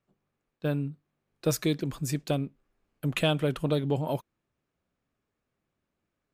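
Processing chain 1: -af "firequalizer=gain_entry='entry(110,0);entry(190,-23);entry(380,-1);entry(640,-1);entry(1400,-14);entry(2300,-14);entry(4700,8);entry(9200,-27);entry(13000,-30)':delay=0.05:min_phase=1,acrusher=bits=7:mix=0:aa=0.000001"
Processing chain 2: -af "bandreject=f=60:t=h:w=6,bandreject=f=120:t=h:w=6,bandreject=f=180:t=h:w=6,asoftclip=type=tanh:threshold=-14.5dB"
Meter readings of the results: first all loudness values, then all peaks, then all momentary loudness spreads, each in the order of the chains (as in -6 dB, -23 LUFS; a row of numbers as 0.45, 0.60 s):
-34.5, -31.0 LUFS; -17.5, -16.5 dBFS; 9, 8 LU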